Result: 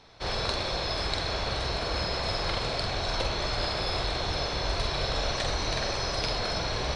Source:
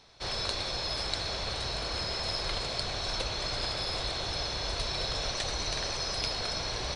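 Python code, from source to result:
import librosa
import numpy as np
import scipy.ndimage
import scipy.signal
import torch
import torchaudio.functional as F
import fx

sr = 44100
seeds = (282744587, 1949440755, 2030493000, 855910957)

y = fx.high_shelf(x, sr, hz=4400.0, db=-11.0)
y = fx.doubler(y, sr, ms=46.0, db=-5.5)
y = F.gain(torch.from_numpy(y), 5.0).numpy()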